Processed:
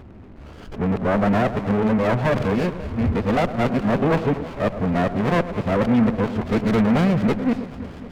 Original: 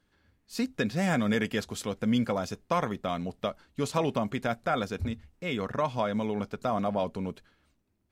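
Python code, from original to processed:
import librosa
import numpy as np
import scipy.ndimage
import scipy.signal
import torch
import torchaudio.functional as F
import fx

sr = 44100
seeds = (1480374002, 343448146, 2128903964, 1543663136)

p1 = x[::-1].copy()
p2 = fx.power_curve(p1, sr, exponent=0.5)
p3 = scipy.signal.sosfilt(scipy.signal.butter(4, 2300.0, 'lowpass', fs=sr, output='sos'), p2)
p4 = p3 + fx.echo_alternate(p3, sr, ms=108, hz=850.0, feedback_pct=77, wet_db=-11, dry=0)
p5 = fx.running_max(p4, sr, window=17)
y = F.gain(torch.from_numpy(p5), 3.5).numpy()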